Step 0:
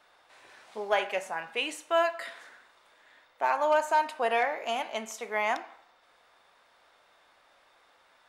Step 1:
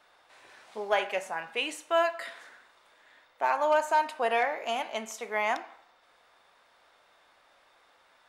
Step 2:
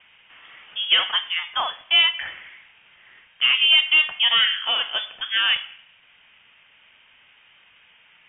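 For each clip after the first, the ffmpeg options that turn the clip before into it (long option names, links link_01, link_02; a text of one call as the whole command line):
ffmpeg -i in.wav -af anull out.wav
ffmpeg -i in.wav -filter_complex "[0:a]acrossover=split=160|820[link_01][link_02][link_03];[link_03]asoftclip=type=hard:threshold=-25.5dB[link_04];[link_01][link_02][link_04]amix=inputs=3:normalize=0,lowpass=frequency=3100:width_type=q:width=0.5098,lowpass=frequency=3100:width_type=q:width=0.6013,lowpass=frequency=3100:width_type=q:width=0.9,lowpass=frequency=3100:width_type=q:width=2.563,afreqshift=-3700,volume=8.5dB" out.wav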